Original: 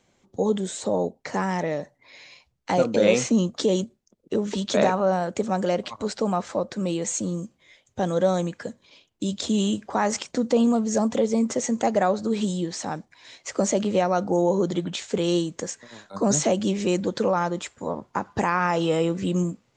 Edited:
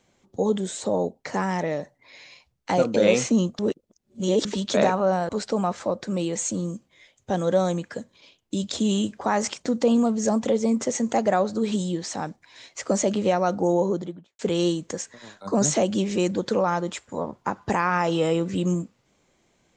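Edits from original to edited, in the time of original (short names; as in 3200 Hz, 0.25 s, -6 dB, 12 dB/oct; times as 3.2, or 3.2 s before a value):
3.59–4.45 reverse
5.29–5.98 cut
14.4–15.08 studio fade out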